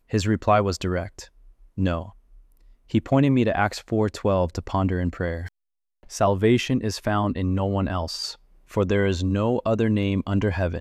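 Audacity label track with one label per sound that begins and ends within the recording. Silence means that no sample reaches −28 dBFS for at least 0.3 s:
1.780000	2.020000	sound
2.940000	5.470000	sound
6.120000	8.310000	sound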